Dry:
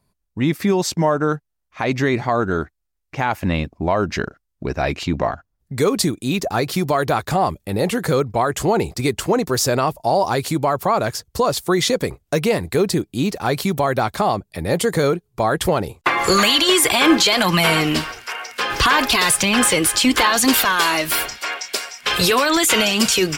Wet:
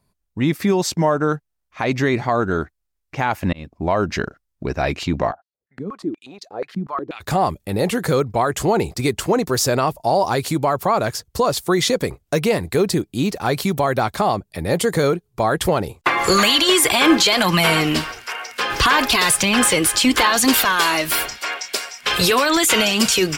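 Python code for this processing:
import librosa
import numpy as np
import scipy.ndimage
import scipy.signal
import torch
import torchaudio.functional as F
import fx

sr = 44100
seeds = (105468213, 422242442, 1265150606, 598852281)

y = fx.filter_held_bandpass(x, sr, hz=8.3, low_hz=210.0, high_hz=4200.0, at=(5.31, 7.2), fade=0.02)
y = fx.edit(y, sr, fx.fade_in_span(start_s=3.53, length_s=0.47, curve='qsin'), tone=tone)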